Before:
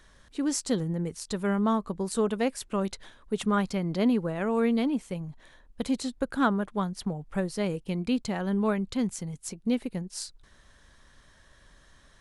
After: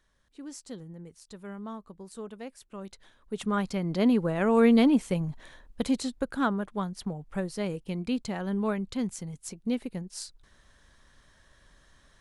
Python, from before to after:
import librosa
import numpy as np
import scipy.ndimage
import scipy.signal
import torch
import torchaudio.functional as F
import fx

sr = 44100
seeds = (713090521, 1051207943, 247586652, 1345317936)

y = fx.gain(x, sr, db=fx.line((2.68, -14.0), (3.48, -3.0), (4.79, 6.0), (5.29, 6.0), (6.42, -2.5)))